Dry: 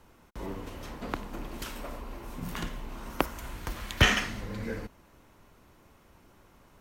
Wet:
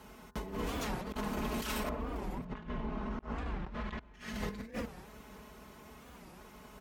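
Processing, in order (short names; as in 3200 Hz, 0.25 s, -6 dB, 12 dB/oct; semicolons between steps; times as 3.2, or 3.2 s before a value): octaver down 2 oct, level -6 dB; HPF 45 Hz 24 dB/oct; comb 4.7 ms, depth 72%; de-hum 79.87 Hz, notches 23; negative-ratio compressor -39 dBFS, ratio -0.5; 1.89–4.14 tape spacing loss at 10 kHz 37 dB; echo 0.555 s -19.5 dB; record warp 45 rpm, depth 250 cents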